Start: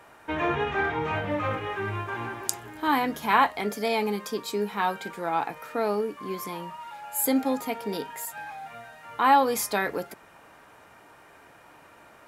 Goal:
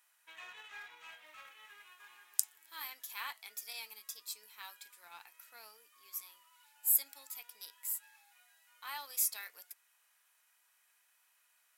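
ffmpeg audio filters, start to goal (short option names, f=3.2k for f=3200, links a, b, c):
-filter_complex "[0:a]highpass=f=1.4k:p=1,aderivative,asplit=2[a][b];[b]aeval=exprs='sgn(val(0))*max(abs(val(0))-0.00501,0)':c=same,volume=-4dB[c];[a][c]amix=inputs=2:normalize=0,asetrate=45938,aresample=44100,volume=-7dB"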